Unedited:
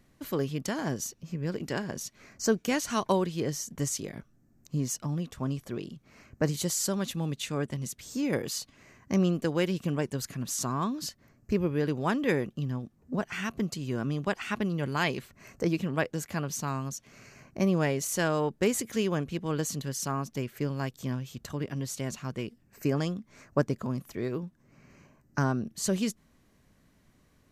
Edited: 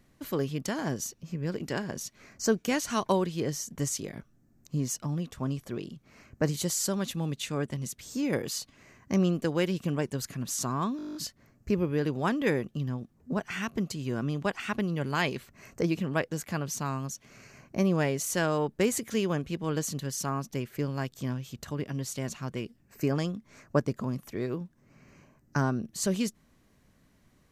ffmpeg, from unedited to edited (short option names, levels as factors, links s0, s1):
-filter_complex "[0:a]asplit=10[s0][s1][s2][s3][s4][s5][s6][s7][s8][s9];[s0]atrim=end=10.992[s10];[s1]atrim=start=10.968:end=10.992[s11];[s2]atrim=start=10.968:end=10.992[s12];[s3]atrim=start=10.968:end=10.992[s13];[s4]atrim=start=10.968:end=10.992[s14];[s5]atrim=start=10.968:end=10.992[s15];[s6]atrim=start=10.968:end=10.992[s16];[s7]atrim=start=10.968:end=10.992[s17];[s8]atrim=start=10.968:end=10.992[s18];[s9]atrim=start=10.968[s19];[s10][s11]acrossfade=d=0.004:c1=hsin:c2=hsin[s20];[s20][s12]acrossfade=d=0.004:c1=hsin:c2=hsin[s21];[s21][s13]acrossfade=d=0.004:c1=hsin:c2=hsin[s22];[s22][s14]acrossfade=d=0.004:c1=hsin:c2=hsin[s23];[s23][s15]acrossfade=d=0.004:c1=hsin:c2=hsin[s24];[s24][s16]acrossfade=d=0.004:c1=hsin:c2=hsin[s25];[s25][s17]acrossfade=d=0.004:c1=hsin:c2=hsin[s26];[s26][s18]acrossfade=d=0.004:c1=hsin:c2=hsin[s27];[s27][s19]acrossfade=d=0.004:c1=hsin:c2=hsin"